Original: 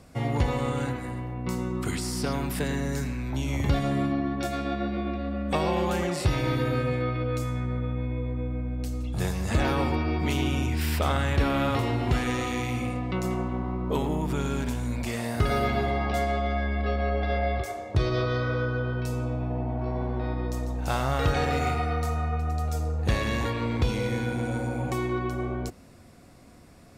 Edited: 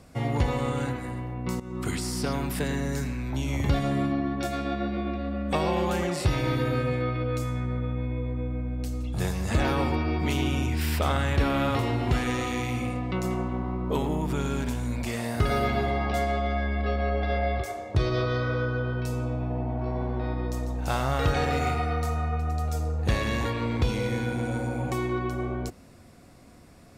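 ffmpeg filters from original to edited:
-filter_complex "[0:a]asplit=2[s0][s1];[s0]atrim=end=1.6,asetpts=PTS-STARTPTS,afade=t=out:st=1.596:d=0.004:c=hsin:silence=0.16788[s2];[s1]atrim=start=1.6,asetpts=PTS-STARTPTS,afade=t=in:d=0.26:silence=0.16788[s3];[s2][s3]concat=n=2:v=0:a=1"

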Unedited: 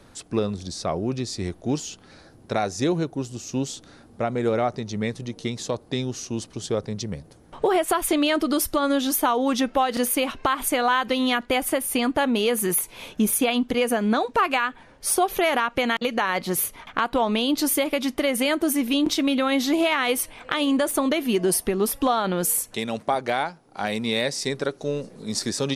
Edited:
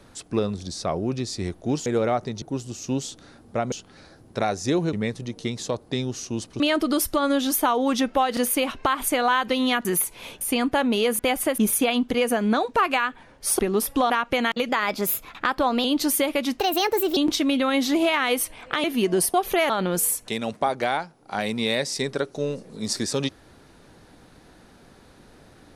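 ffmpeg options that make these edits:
-filter_complex "[0:a]asplit=19[s0][s1][s2][s3][s4][s5][s6][s7][s8][s9][s10][s11][s12][s13][s14][s15][s16][s17][s18];[s0]atrim=end=1.862[s19];[s1]atrim=start=4.368:end=4.932[s20];[s2]atrim=start=3.068:end=4.372[s21];[s3]atrim=start=1.858:end=3.072[s22];[s4]atrim=start=4.928:end=6.602[s23];[s5]atrim=start=8.198:end=11.452[s24];[s6]atrim=start=12.618:end=13.182[s25];[s7]atrim=start=11.838:end=12.622[s26];[s8]atrim=start=11.448:end=11.842[s27];[s9]atrim=start=13.178:end=15.192[s28];[s10]atrim=start=21.648:end=22.162[s29];[s11]atrim=start=15.548:end=16.144[s30];[s12]atrim=start=16.14:end=17.42,asetpts=PTS-STARTPTS,asetrate=48951,aresample=44100,atrim=end_sample=50854,asetpts=PTS-STARTPTS[s31];[s13]atrim=start=17.416:end=18.164[s32];[s14]atrim=start=18.16:end=18.95,asetpts=PTS-STARTPTS,asetrate=59535,aresample=44100[s33];[s15]atrim=start=18.946:end=20.622[s34];[s16]atrim=start=21.148:end=21.652[s35];[s17]atrim=start=15.188:end=15.552[s36];[s18]atrim=start=22.158[s37];[s19][s20]acrossfade=d=0.004:c1=hsin:c2=hsin[s38];[s38][s21]acrossfade=d=0.004:c1=hsin:c2=hsin[s39];[s39][s22]acrossfade=d=0.004:c1=hsin:c2=hsin[s40];[s40][s23]acrossfade=d=0.004:c1=hsin:c2=hsin[s41];[s41][s24]acrossfade=d=0.004:c1=hsin:c2=hsin[s42];[s42][s25]acrossfade=d=0.004:c1=hsin:c2=hsin[s43];[s43][s26]acrossfade=d=0.004:c1=hsin:c2=hsin[s44];[s44][s27]acrossfade=d=0.004:c1=hsin:c2=hsin[s45];[s45][s28]acrossfade=d=0.004:c1=hsin:c2=hsin[s46];[s46][s29]acrossfade=d=0.004:c1=hsin:c2=hsin[s47];[s47][s30]acrossfade=d=0.004:c1=hsin:c2=hsin[s48];[s48][s31]acrossfade=d=0.004:c1=hsin:c2=hsin[s49];[s49][s32]acrossfade=d=0.004:c1=hsin:c2=hsin[s50];[s50][s33]acrossfade=d=0.004:c1=hsin:c2=hsin[s51];[s51][s34]acrossfade=d=0.004:c1=hsin:c2=hsin[s52];[s52][s35]acrossfade=d=0.004:c1=hsin:c2=hsin[s53];[s53][s36]acrossfade=d=0.004:c1=hsin:c2=hsin[s54];[s54][s37]acrossfade=d=0.004:c1=hsin:c2=hsin"

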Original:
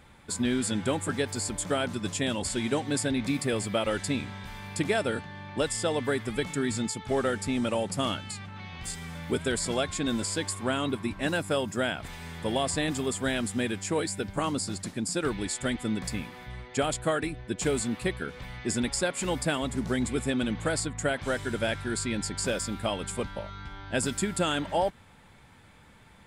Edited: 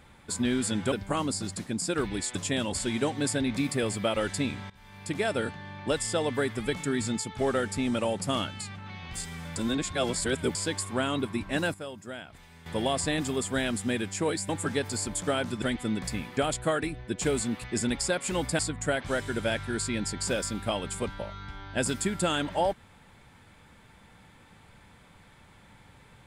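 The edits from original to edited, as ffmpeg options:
-filter_complex "[0:a]asplit=13[s0][s1][s2][s3][s4][s5][s6][s7][s8][s9][s10][s11][s12];[s0]atrim=end=0.922[s13];[s1]atrim=start=14.188:end=15.622[s14];[s2]atrim=start=2.048:end=4.4,asetpts=PTS-STARTPTS,afade=t=out:st=2.348:d=0.004:c=hsin:silence=0.105925[s15];[s3]atrim=start=4.4:end=9.262,asetpts=PTS-STARTPTS,afade=t=in:d=0.69:silence=0.105925[s16];[s4]atrim=start=9.258:end=10.252,asetpts=PTS-STARTPTS,areverse[s17];[s5]atrim=start=10.248:end=11.442[s18];[s6]atrim=start=11.438:end=12.362,asetpts=PTS-STARTPTS,volume=0.266[s19];[s7]atrim=start=12.358:end=14.192[s20];[s8]atrim=start=0.918:end=2.052[s21];[s9]atrim=start=15.618:end=16.372[s22];[s10]atrim=start=16.768:end=18.042[s23];[s11]atrim=start=18.568:end=19.522[s24];[s12]atrim=start=20.758[s25];[s13][s14]acrossfade=d=0.004:c1=hsin:c2=hsin[s26];[s15][s16]concat=n=2:v=0:a=1[s27];[s26][s27]acrossfade=d=0.004:c1=hsin:c2=hsin[s28];[s28][s17]acrossfade=d=0.004:c1=hsin:c2=hsin[s29];[s29][s18]acrossfade=d=0.004:c1=hsin:c2=hsin[s30];[s30][s19]acrossfade=d=0.004:c1=hsin:c2=hsin[s31];[s31][s20]acrossfade=d=0.004:c1=hsin:c2=hsin[s32];[s32][s21]acrossfade=d=0.004:c1=hsin:c2=hsin[s33];[s33][s22]acrossfade=d=0.004:c1=hsin:c2=hsin[s34];[s34][s23]acrossfade=d=0.004:c1=hsin:c2=hsin[s35];[s35][s24]acrossfade=d=0.004:c1=hsin:c2=hsin[s36];[s36][s25]acrossfade=d=0.004:c1=hsin:c2=hsin"

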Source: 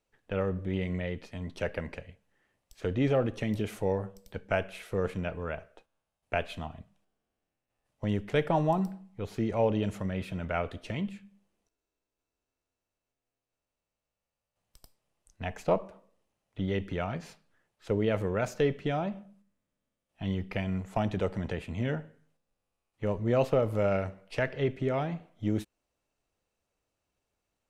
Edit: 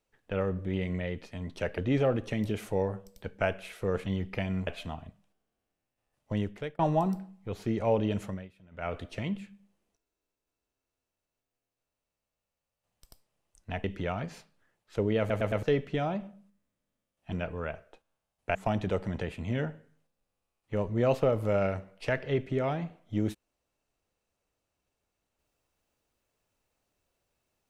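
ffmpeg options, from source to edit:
-filter_complex "[0:a]asplit=14[s0][s1][s2][s3][s4][s5][s6][s7][s8][s9][s10][s11][s12][s13];[s0]atrim=end=1.782[s14];[s1]atrim=start=2.878:end=5.162[s15];[s2]atrim=start=20.238:end=20.852[s16];[s3]atrim=start=6.388:end=8.51,asetpts=PTS-STARTPTS,afade=t=out:st=1.682:d=0.44[s17];[s4]atrim=start=8.51:end=10.21,asetpts=PTS-STARTPTS,afade=t=in:d=0.004:c=hsin,afade=t=out:st=1.45:d=0.25:silence=0.0794328[s18];[s5]atrim=start=10.21:end=10.43,asetpts=PTS-STARTPTS,volume=0.0794[s19];[s6]atrim=start=10.43:end=15.562,asetpts=PTS-STARTPTS,afade=t=in:d=0.25:silence=0.0794328[s20];[s7]atrim=start=16.758:end=18.222[s21];[s8]atrim=start=18.108:end=18.222[s22];[s9]atrim=start=18.108:end=18.222[s23];[s10]atrim=start=18.108:end=18.222[s24];[s11]atrim=start=18.548:end=20.242[s25];[s12]atrim=start=5.158:end=6.392[s26];[s13]atrim=start=20.848[s27];[s14][s15]acrossfade=d=0.004:c1=hsin:c2=hsin[s28];[s28][s16]acrossfade=d=0.004:c1=hsin:c2=hsin[s29];[s17][s18][s19][s20]concat=n=4:v=0:a=1[s30];[s29][s30]acrossfade=d=0.004:c1=hsin:c2=hsin[s31];[s31][s21]acrossfade=d=0.004:c1=hsin:c2=hsin[s32];[s32][s22]acrossfade=d=0.004:c1=hsin:c2=hsin[s33];[s33][s23]acrossfade=d=0.004:c1=hsin:c2=hsin[s34];[s34][s24]acrossfade=d=0.004:c1=hsin:c2=hsin[s35];[s35][s25]acrossfade=d=0.004:c1=hsin:c2=hsin[s36];[s36][s26]acrossfade=d=0.004:c1=hsin:c2=hsin[s37];[s37][s27]acrossfade=d=0.004:c1=hsin:c2=hsin"

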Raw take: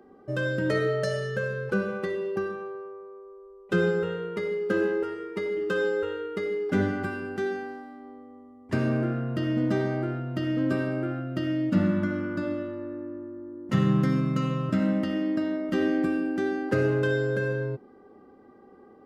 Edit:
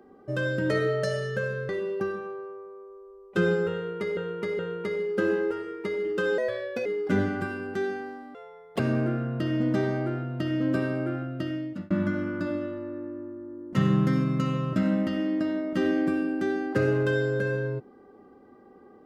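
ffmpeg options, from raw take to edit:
-filter_complex "[0:a]asplit=9[s0][s1][s2][s3][s4][s5][s6][s7][s8];[s0]atrim=end=1.692[s9];[s1]atrim=start=2.048:end=4.532[s10];[s2]atrim=start=4.108:end=4.532[s11];[s3]atrim=start=4.108:end=5.904[s12];[s4]atrim=start=5.9:end=6.48,asetpts=PTS-STARTPTS,asetrate=53802,aresample=44100[s13];[s5]atrim=start=6.476:end=7.974[s14];[s6]atrim=start=7.97:end=8.76,asetpts=PTS-STARTPTS,asetrate=77616,aresample=44100[s15];[s7]atrim=start=8.756:end=11.87,asetpts=PTS-STARTPTS,afade=t=out:st=2.294:d=0.82:c=qsin[s16];[s8]atrim=start=11.87,asetpts=PTS-STARTPTS,afade=t=in:d=0.004:c=hsin[s17];[s9][s10]acrossfade=d=0.004:c1=hsin:c2=hsin[s18];[s18][s11]acrossfade=d=0.004:c1=hsin:c2=hsin[s19];[s19][s12]acrossfade=d=0.004:c1=hsin:c2=hsin[s20];[s20][s13]acrossfade=d=0.004:c1=hsin:c2=hsin[s21];[s21][s14]acrossfade=d=0.004:c1=hsin:c2=hsin[s22];[s22][s15]acrossfade=d=0.004:c1=hsin:c2=hsin[s23];[s16][s17]concat=n=2:v=0:a=1[s24];[s23][s24]acrossfade=d=0.004:c1=hsin:c2=hsin"

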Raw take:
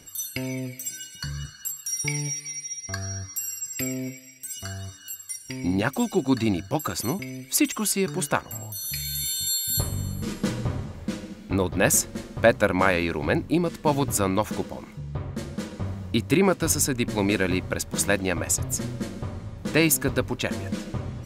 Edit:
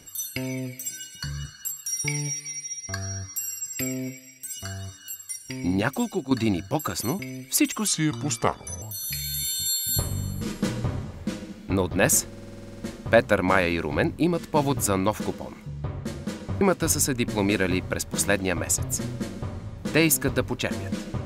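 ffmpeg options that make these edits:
-filter_complex "[0:a]asplit=15[s0][s1][s2][s3][s4][s5][s6][s7][s8][s9][s10][s11][s12][s13][s14];[s0]atrim=end=6.31,asetpts=PTS-STARTPTS,afade=t=out:st=5.92:d=0.39:silence=0.354813[s15];[s1]atrim=start=6.31:end=7.874,asetpts=PTS-STARTPTS,afade=t=in:d=0.004:c=hsin:silence=0.354813[s16];[s2]atrim=start=7.87:end=8.63,asetpts=PTS-STARTPTS,asetrate=35280,aresample=44100[s17];[s3]atrim=start=8.626:end=12.132[s18];[s4]atrim=start=12.078:end=12.132[s19];[s5]atrim=start=12.078:end=12.132[s20];[s6]atrim=start=12.078:end=12.132[s21];[s7]atrim=start=12.078:end=12.132[s22];[s8]atrim=start=12.078:end=12.132[s23];[s9]atrim=start=12.078:end=12.132[s24];[s10]atrim=start=12.078:end=12.132[s25];[s11]atrim=start=12.078:end=12.132[s26];[s12]atrim=start=12.078:end=12.132[s27];[s13]atrim=start=12.078:end=15.922[s28];[s14]atrim=start=16.408[s29];[s15][s16]concat=n=2:v=0:a=1[s30];[s30][s17]acrossfade=d=0.004:c1=hsin:c2=hsin[s31];[s31][s18]acrossfade=d=0.004:c1=hsin:c2=hsin[s32];[s32][s19]acrossfade=d=0.004:c1=hsin:c2=hsin[s33];[s33][s20]acrossfade=d=0.004:c1=hsin:c2=hsin[s34];[s34][s21]acrossfade=d=0.004:c1=hsin:c2=hsin[s35];[s35][s22]acrossfade=d=0.004:c1=hsin:c2=hsin[s36];[s36][s23]acrossfade=d=0.004:c1=hsin:c2=hsin[s37];[s37][s24]acrossfade=d=0.004:c1=hsin:c2=hsin[s38];[s38][s25]acrossfade=d=0.004:c1=hsin:c2=hsin[s39];[s39][s26]acrossfade=d=0.004:c1=hsin:c2=hsin[s40];[s40][s27]acrossfade=d=0.004:c1=hsin:c2=hsin[s41];[s41][s28]acrossfade=d=0.004:c1=hsin:c2=hsin[s42];[s42][s29]acrossfade=d=0.004:c1=hsin:c2=hsin"

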